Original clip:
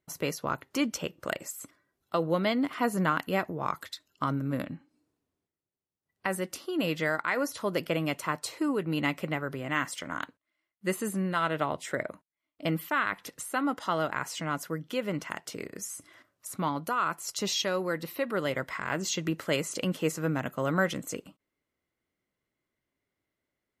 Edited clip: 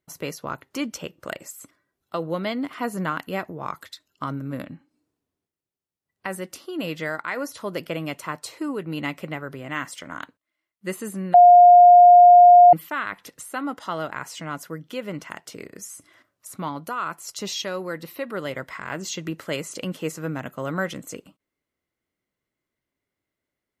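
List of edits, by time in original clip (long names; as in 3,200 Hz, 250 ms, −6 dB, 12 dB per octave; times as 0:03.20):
0:11.34–0:12.73: beep over 709 Hz −6.5 dBFS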